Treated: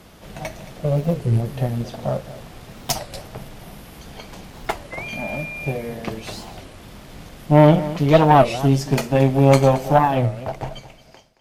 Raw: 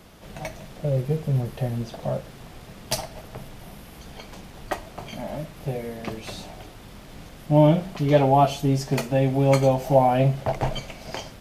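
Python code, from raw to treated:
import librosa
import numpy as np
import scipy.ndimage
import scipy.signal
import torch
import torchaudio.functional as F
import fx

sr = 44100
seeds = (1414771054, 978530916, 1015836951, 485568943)

p1 = fx.fade_out_tail(x, sr, length_s=1.81)
p2 = fx.cheby_harmonics(p1, sr, harmonics=(4, 7), levels_db=(-18, -33), full_scale_db=-5.5)
p3 = fx.dmg_tone(p2, sr, hz=2400.0, level_db=-35.0, at=(4.92, 5.71), fade=0.02)
p4 = p3 + fx.echo_single(p3, sr, ms=223, db=-15.5, dry=0)
p5 = fx.record_warp(p4, sr, rpm=33.33, depth_cents=250.0)
y = p5 * librosa.db_to_amplitude(4.5)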